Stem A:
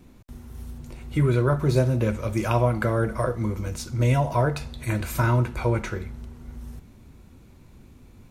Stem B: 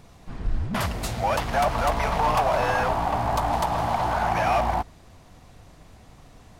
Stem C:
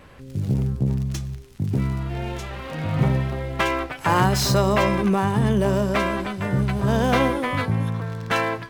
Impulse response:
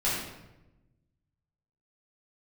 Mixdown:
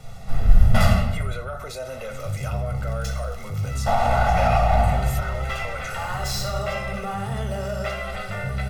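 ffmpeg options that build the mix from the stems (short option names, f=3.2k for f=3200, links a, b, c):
-filter_complex "[0:a]highpass=570,alimiter=limit=-20.5dB:level=0:latency=1:release=153,volume=2.5dB[a];[1:a]volume=-3.5dB,asplit=3[b][c][d];[b]atrim=end=0.93,asetpts=PTS-STARTPTS,afade=t=out:st=0.926:d=0.004:c=hsin[e];[c]atrim=start=0.93:end=3.86,asetpts=PTS-STARTPTS,volume=0[f];[d]atrim=start=3.86,asetpts=PTS-STARTPTS,afade=t=in:d=0.004:c=hsin[g];[e][f][g]concat=n=3:v=0:a=1,asplit=2[h][i];[i]volume=-3.5dB[j];[2:a]equalizer=f=180:w=0.5:g=-11.5,acompressor=threshold=-36dB:ratio=2,adelay=1900,volume=3dB,asplit=2[k][l];[l]volume=-14dB[m];[a][k]amix=inputs=2:normalize=0,asoftclip=type=tanh:threshold=-19dB,alimiter=level_in=5dB:limit=-24dB:level=0:latency=1:release=16,volume=-5dB,volume=0dB[n];[3:a]atrim=start_sample=2205[o];[j][m]amix=inputs=2:normalize=0[p];[p][o]afir=irnorm=-1:irlink=0[q];[h][n][q]amix=inputs=3:normalize=0,aecho=1:1:1.5:0.96,acrossover=split=130[r][s];[s]acompressor=threshold=-17dB:ratio=10[t];[r][t]amix=inputs=2:normalize=0"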